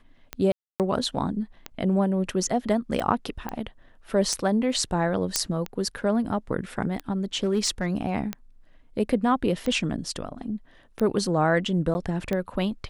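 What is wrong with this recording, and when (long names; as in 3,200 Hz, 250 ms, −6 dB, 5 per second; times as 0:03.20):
scratch tick 45 rpm −15 dBFS
0:00.52–0:00.80: drop-out 278 ms
0:03.49: click −17 dBFS
0:05.36: click −4 dBFS
0:07.43–0:07.86: clipping −17.5 dBFS
0:11.94–0:11.95: drop-out 10 ms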